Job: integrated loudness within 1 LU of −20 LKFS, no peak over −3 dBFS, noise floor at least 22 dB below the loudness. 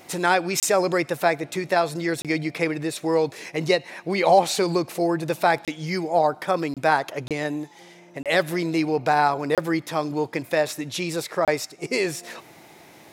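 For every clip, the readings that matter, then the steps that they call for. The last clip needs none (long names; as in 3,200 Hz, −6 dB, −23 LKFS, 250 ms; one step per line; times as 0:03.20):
number of dropouts 8; longest dropout 27 ms; integrated loudness −23.5 LKFS; sample peak −6.0 dBFS; target loudness −20.0 LKFS
→ repair the gap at 0:00.60/0:02.22/0:05.65/0:06.74/0:07.28/0:08.23/0:09.55/0:11.45, 27 ms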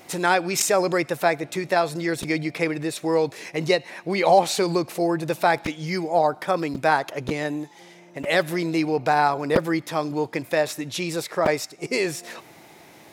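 number of dropouts 0; integrated loudness −23.5 LKFS; sample peak −4.5 dBFS; target loudness −20.0 LKFS
→ level +3.5 dB
brickwall limiter −3 dBFS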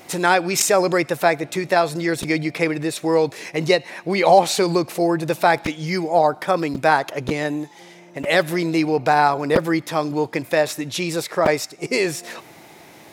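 integrated loudness −20.0 LKFS; sample peak −3.0 dBFS; background noise floor −45 dBFS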